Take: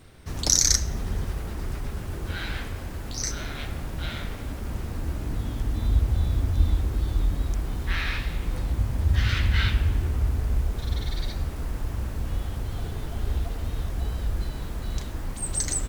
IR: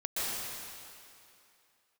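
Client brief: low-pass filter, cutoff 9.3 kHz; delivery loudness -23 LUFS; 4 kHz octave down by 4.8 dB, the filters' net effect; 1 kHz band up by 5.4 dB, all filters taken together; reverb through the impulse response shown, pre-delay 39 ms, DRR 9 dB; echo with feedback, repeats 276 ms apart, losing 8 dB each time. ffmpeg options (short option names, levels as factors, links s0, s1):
-filter_complex "[0:a]lowpass=9300,equalizer=f=1000:t=o:g=7.5,equalizer=f=4000:t=o:g=-7,aecho=1:1:276|552|828|1104|1380:0.398|0.159|0.0637|0.0255|0.0102,asplit=2[s0][s1];[1:a]atrim=start_sample=2205,adelay=39[s2];[s1][s2]afir=irnorm=-1:irlink=0,volume=0.15[s3];[s0][s3]amix=inputs=2:normalize=0,volume=1.68"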